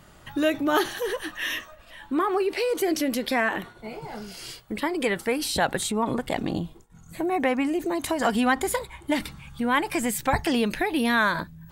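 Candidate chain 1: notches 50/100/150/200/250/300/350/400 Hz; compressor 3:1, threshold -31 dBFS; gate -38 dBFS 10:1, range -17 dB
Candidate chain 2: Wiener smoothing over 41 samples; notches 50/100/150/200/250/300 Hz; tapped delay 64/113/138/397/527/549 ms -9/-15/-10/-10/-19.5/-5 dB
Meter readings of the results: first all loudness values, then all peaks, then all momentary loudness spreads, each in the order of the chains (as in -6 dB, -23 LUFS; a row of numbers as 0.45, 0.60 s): -33.5, -26.0 LUFS; -18.0, -8.0 dBFS; 8, 11 LU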